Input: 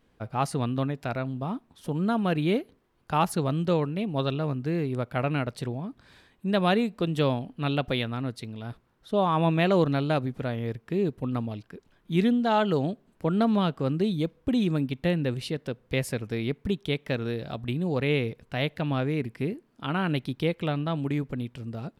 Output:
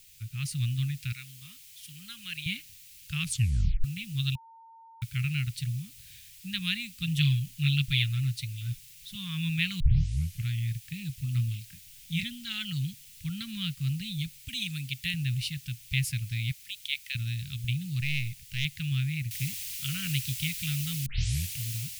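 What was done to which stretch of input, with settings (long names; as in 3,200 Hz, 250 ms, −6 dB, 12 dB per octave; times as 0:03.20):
0:01.12–0:02.46: high-pass filter 1,000 Hz 6 dB per octave
0:03.21: tape stop 0.63 s
0:04.35–0:05.02: beep over 908 Hz −11.5 dBFS
0:07.01–0:09.15: comb filter 6.6 ms, depth 68%
0:09.80: tape start 0.70 s
0:11.32–0:12.23: double-tracking delay 25 ms −6 dB
0:14.39–0:15.14: spectral tilt +2 dB per octave
0:16.51–0:17.15: high-pass filter 1,400 Hz
0:18.01–0:18.65: gain on one half-wave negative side −7 dB
0:19.31: noise floor change −55 dB −41 dB
0:21.06: tape start 0.51 s
whole clip: Chebyshev band-stop filter 130–2,400 Hz, order 3; automatic gain control gain up to 4 dB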